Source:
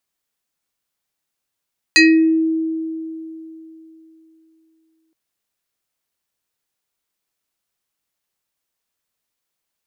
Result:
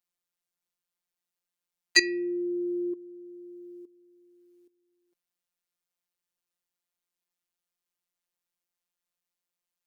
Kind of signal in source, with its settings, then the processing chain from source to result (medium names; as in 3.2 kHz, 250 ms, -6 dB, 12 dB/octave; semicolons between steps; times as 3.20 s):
FM tone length 3.17 s, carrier 322 Hz, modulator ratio 6.88, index 2.5, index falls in 0.47 s exponential, decay 3.30 s, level -6 dB
dynamic bell 440 Hz, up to -7 dB, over -28 dBFS, Q 0.81; robot voice 176 Hz; level held to a coarse grid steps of 15 dB